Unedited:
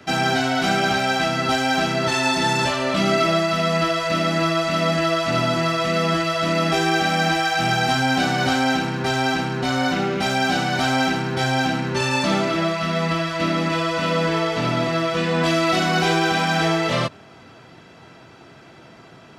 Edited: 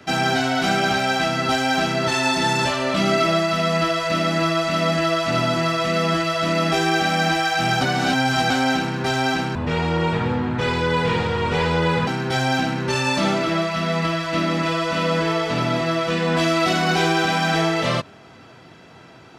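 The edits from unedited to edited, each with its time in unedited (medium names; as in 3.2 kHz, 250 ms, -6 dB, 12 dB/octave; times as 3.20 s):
7.81–8.50 s: reverse
9.55–11.14 s: speed 63%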